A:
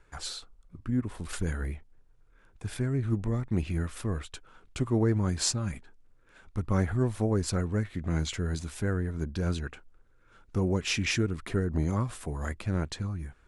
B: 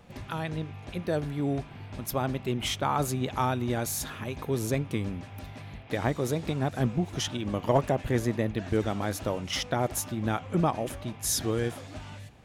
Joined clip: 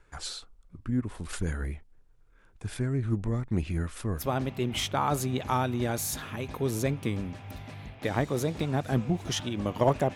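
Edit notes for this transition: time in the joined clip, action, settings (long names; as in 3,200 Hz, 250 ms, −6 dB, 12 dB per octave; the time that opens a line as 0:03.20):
A
0:04.20: continue with B from 0:02.08, crossfade 0.12 s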